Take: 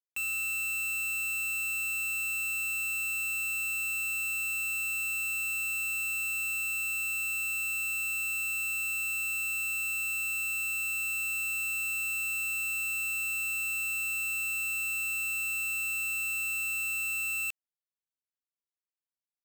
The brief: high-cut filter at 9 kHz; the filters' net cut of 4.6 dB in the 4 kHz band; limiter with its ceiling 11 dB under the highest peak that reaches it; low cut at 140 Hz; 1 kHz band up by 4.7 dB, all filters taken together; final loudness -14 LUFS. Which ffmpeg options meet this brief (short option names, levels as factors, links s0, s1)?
-af "highpass=140,lowpass=9000,equalizer=f=1000:t=o:g=7.5,equalizer=f=4000:t=o:g=-5.5,volume=22.4,alimiter=limit=0.237:level=0:latency=1"